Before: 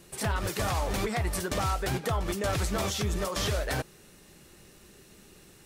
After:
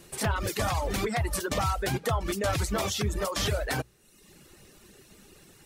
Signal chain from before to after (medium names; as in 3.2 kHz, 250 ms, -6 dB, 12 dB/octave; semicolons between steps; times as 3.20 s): hum notches 60/120/180 Hz; reverb removal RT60 0.87 s; trim +2.5 dB